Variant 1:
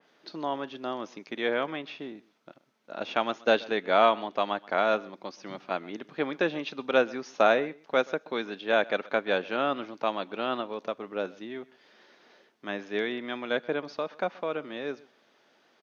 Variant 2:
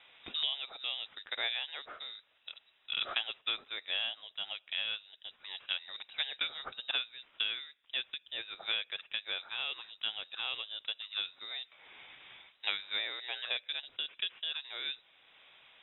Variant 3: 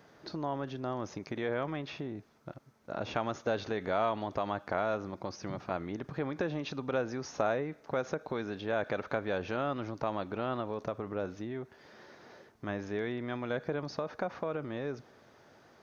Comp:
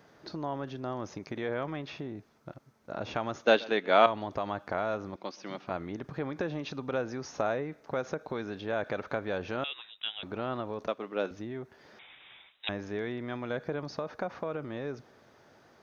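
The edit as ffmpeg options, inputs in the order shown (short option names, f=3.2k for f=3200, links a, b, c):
-filter_complex "[0:a]asplit=3[a][b][c];[1:a]asplit=2[d][e];[2:a]asplit=6[f][g][h][i][j][k];[f]atrim=end=3.452[l];[a]atrim=start=3.448:end=4.062[m];[g]atrim=start=4.058:end=5.162[n];[b]atrim=start=5.158:end=5.672[o];[h]atrim=start=5.668:end=9.642[p];[d]atrim=start=9.638:end=10.232[q];[i]atrim=start=10.228:end=10.872[r];[c]atrim=start=10.868:end=11.312[s];[j]atrim=start=11.308:end=11.992[t];[e]atrim=start=11.988:end=12.692[u];[k]atrim=start=12.688[v];[l][m]acrossfade=d=0.004:c1=hsin:c2=hsin[w];[w][n]acrossfade=d=0.004:c1=hsin:c2=hsin[x];[x][o]acrossfade=d=0.004:c1=hsin:c2=hsin[y];[y][p]acrossfade=d=0.004:c1=hsin:c2=hsin[z];[z][q]acrossfade=d=0.004:c1=hsin:c2=hsin[aa];[aa][r]acrossfade=d=0.004:c1=hsin:c2=hsin[ab];[ab][s]acrossfade=d=0.004:c1=hsin:c2=hsin[ac];[ac][t]acrossfade=d=0.004:c1=hsin:c2=hsin[ad];[ad][u]acrossfade=d=0.004:c1=hsin:c2=hsin[ae];[ae][v]acrossfade=d=0.004:c1=hsin:c2=hsin"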